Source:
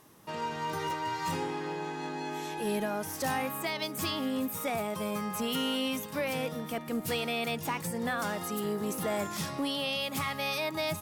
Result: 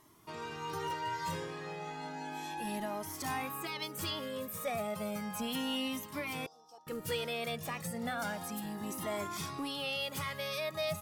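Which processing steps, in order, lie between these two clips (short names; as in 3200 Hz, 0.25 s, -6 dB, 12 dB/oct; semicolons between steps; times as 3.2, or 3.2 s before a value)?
6.46–6.87 double band-pass 2100 Hz, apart 2.7 oct; cascading flanger rising 0.33 Hz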